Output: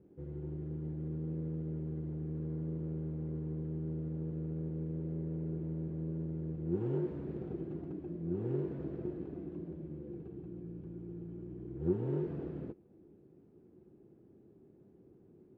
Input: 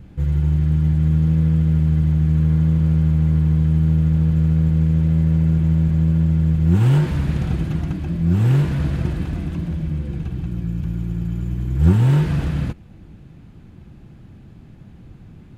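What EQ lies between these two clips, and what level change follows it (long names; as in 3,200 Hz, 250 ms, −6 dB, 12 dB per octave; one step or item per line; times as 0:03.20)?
resonant band-pass 390 Hz, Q 4.6
−2.0 dB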